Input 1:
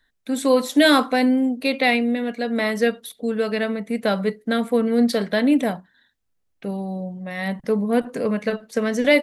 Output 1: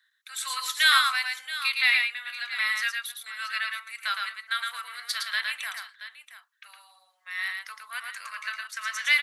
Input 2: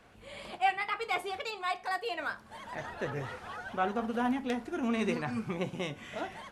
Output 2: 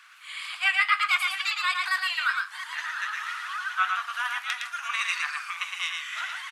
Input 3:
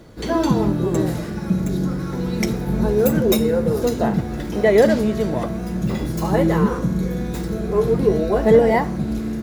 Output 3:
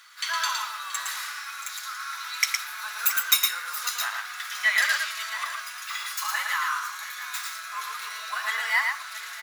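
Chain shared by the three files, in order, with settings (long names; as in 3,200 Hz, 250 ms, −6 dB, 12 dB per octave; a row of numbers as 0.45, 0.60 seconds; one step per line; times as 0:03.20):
elliptic high-pass filter 1,200 Hz, stop band 70 dB
on a send: multi-tap delay 112/677 ms −4/−13.5 dB
on the sum: loudness normalisation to −27 LKFS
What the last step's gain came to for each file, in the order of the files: 0.0, +11.5, +5.5 decibels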